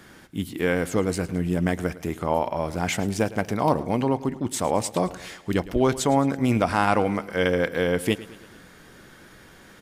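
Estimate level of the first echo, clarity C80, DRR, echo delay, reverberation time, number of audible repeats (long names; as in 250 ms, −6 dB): −17.5 dB, no reverb audible, no reverb audible, 109 ms, no reverb audible, 4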